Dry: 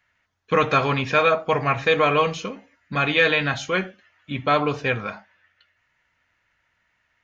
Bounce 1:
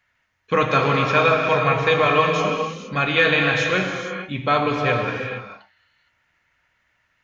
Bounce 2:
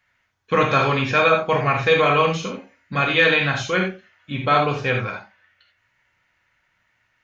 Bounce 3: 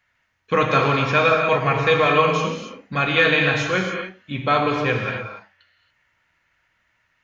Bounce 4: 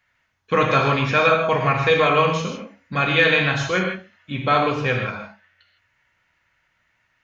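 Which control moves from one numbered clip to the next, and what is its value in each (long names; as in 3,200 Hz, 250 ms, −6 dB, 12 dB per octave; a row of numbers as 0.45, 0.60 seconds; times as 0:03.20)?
reverb whose tail is shaped and stops, gate: 490, 110, 310, 180 milliseconds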